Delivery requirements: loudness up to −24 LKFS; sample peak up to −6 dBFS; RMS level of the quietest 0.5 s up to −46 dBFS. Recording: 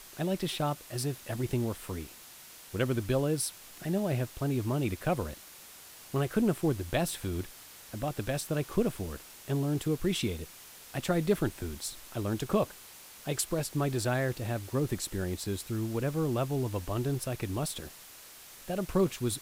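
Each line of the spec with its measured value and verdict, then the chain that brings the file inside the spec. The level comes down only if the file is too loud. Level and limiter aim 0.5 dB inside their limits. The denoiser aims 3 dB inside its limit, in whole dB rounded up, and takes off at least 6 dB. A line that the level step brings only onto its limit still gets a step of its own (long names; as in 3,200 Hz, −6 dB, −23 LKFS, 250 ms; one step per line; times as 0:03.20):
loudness −32.5 LKFS: in spec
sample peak −14.0 dBFS: in spec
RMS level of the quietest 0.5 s −51 dBFS: in spec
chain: no processing needed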